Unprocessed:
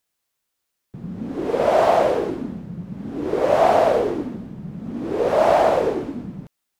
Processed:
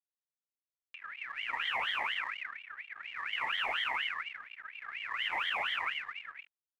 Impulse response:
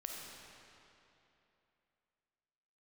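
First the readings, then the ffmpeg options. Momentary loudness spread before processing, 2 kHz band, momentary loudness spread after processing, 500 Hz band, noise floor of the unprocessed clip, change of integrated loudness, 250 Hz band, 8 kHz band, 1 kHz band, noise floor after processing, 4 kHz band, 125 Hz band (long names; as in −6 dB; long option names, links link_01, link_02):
17 LU, +0.5 dB, 14 LU, −35.0 dB, −78 dBFS, −15.0 dB, below −35 dB, can't be measured, −17.0 dB, below −85 dBFS, +2.5 dB, below −35 dB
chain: -filter_complex "[0:a]asoftclip=type=tanh:threshold=-10dB,alimiter=limit=-14dB:level=0:latency=1:release=61,highpass=frequency=130:width=0.5412,highpass=frequency=130:width=1.3066,equalizer=frequency=1600:width=0.97:gain=-8,asplit=2[link_01][link_02];[link_02]adelay=1108,volume=-24dB,highshelf=frequency=4000:gain=-24.9[link_03];[link_01][link_03]amix=inputs=2:normalize=0,afwtdn=0.0355,aeval=exprs='sgn(val(0))*max(abs(val(0))-0.00668,0)':channel_layout=same,acompressor=mode=upward:threshold=-32dB:ratio=2.5,aeval=exprs='val(0)*sin(2*PI*2000*n/s+2000*0.3/4.2*sin(2*PI*4.2*n/s))':channel_layout=same,volume=-8.5dB"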